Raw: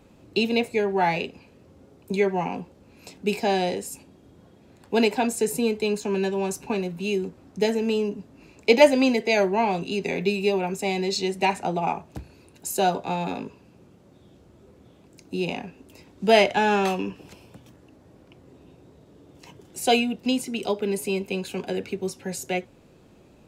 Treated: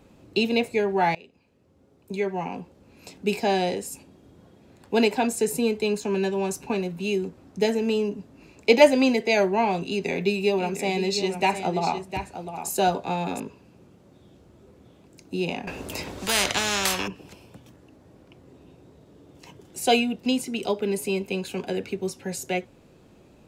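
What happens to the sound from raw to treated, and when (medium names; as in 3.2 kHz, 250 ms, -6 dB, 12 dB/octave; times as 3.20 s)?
1.15–3.12 s: fade in linear, from -22 dB
9.87–13.40 s: delay 706 ms -9.5 dB
15.67–17.08 s: spectrum-flattening compressor 4:1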